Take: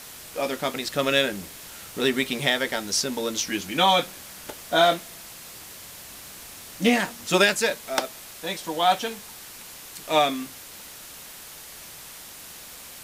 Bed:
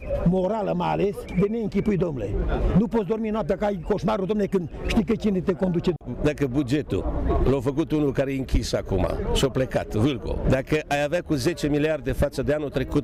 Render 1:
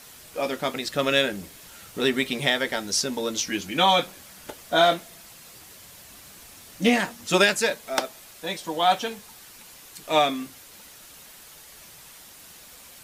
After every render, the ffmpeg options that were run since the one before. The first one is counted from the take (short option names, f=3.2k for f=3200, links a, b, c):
-af "afftdn=nr=6:nf=-43"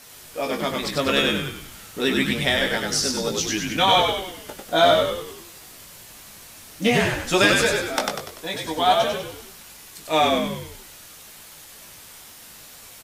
-filter_complex "[0:a]asplit=2[a][b];[b]adelay=19,volume=-6.5dB[c];[a][c]amix=inputs=2:normalize=0,asplit=7[d][e][f][g][h][i][j];[e]adelay=97,afreqshift=-58,volume=-3dB[k];[f]adelay=194,afreqshift=-116,volume=-9.4dB[l];[g]adelay=291,afreqshift=-174,volume=-15.8dB[m];[h]adelay=388,afreqshift=-232,volume=-22.1dB[n];[i]adelay=485,afreqshift=-290,volume=-28.5dB[o];[j]adelay=582,afreqshift=-348,volume=-34.9dB[p];[d][k][l][m][n][o][p]amix=inputs=7:normalize=0"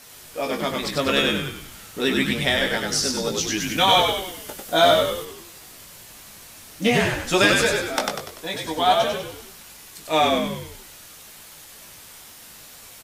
-filter_complex "[0:a]asettb=1/sr,asplit=3[a][b][c];[a]atrim=end=3.604[d];[b]atrim=start=3.6:end=5.25,asetpts=PTS-STARTPTS,afade=t=in:d=0.004:c=qsin,afade=t=out:st=1.646:d=0.004:c=qsin,highshelf=f=6.5k:g=7[e];[c]atrim=start=5.246[f];[d][e]acrossfade=d=0.004:c1=hsin:c2=qsin[g];[g][f]acrossfade=d=0.004:c1=qsin:c2=hsin"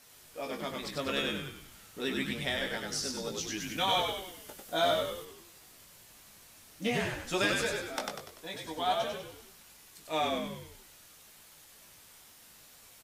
-af "volume=-12dB"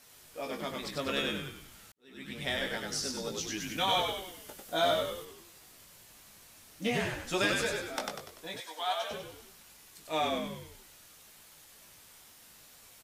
-filter_complex "[0:a]asettb=1/sr,asplit=3[a][b][c];[a]atrim=end=8.604[d];[b]atrim=start=8.6:end=9.11,asetpts=PTS-STARTPTS,afade=t=in:d=0.004:c=qsin,afade=t=out:st=0.506:d=0.004:c=qsin,highpass=760[e];[c]atrim=start=9.106[f];[d][e]acrossfade=d=0.004:c1=hsin:c2=qsin[g];[g][f]acrossfade=d=0.004:c1=qsin:c2=hsin,asplit=2[h][i];[h]atrim=end=1.92,asetpts=PTS-STARTPTS,afade=t=out:st=1.916:d=0.004:c=hsin[j];[i]atrim=start=1.92,asetpts=PTS-STARTPTS,afade=t=in:d=0.59:c=qua[k];[j][k]concat=n=2:v=0:a=1"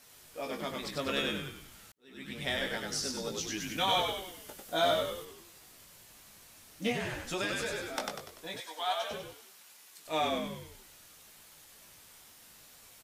-filter_complex "[0:a]asettb=1/sr,asplit=3[a][b][c];[a]atrim=end=6.924[d];[b]atrim=start=6.92:end=7.86,asetpts=PTS-STARTPTS,afade=t=in:d=0.004:c=qsin,afade=t=out:st=0.936:d=0.004:c=qsin,acompressor=threshold=-33dB:ratio=2:attack=3.2:release=140:knee=1:detection=peak[e];[c]atrim=start=7.856[f];[d][e]acrossfade=d=0.004:c1=hsin:c2=qsin[g];[g][f]acrossfade=d=0.004:c1=qsin:c2=hsin,asettb=1/sr,asplit=3[h][i][j];[h]atrim=end=9.334[k];[i]atrim=start=9.33:end=10.06,asetpts=PTS-STARTPTS,afade=t=in:d=0.004:c=qsin,afade=t=out:st=0.726:d=0.004:c=qsin,highpass=f=650:p=1[l];[j]atrim=start=10.056[m];[k][l]acrossfade=d=0.004:c1=hsin:c2=qsin[n];[n][m]acrossfade=d=0.004:c1=qsin:c2=hsin"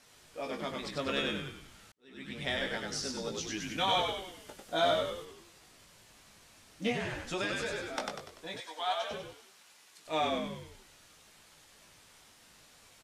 -af "lowpass=10k,highshelf=f=6.8k:g=-5.5"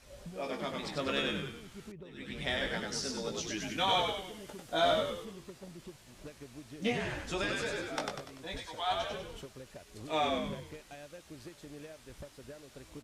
-filter_complex "[1:a]volume=-26dB[a];[0:a][a]amix=inputs=2:normalize=0"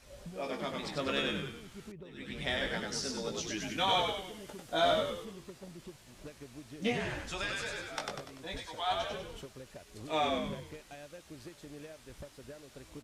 -filter_complex "[0:a]asettb=1/sr,asplit=3[a][b][c];[a]atrim=end=7.284[d];[b]atrim=start=7.28:end=8.09,asetpts=PTS-STARTPTS,afade=t=in:d=0.004:c=qsin,afade=t=out:st=0.806:d=0.004:c=qsin,equalizer=f=300:w=0.66:g=-9.5[e];[c]atrim=start=8.086[f];[d][e]acrossfade=d=0.004:c1=hsin:c2=qsin[g];[g][f]acrossfade=d=0.004:c1=qsin:c2=hsin"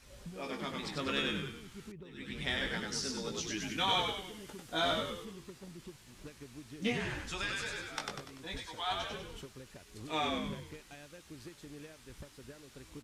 -af "equalizer=f=620:t=o:w=0.61:g=-8"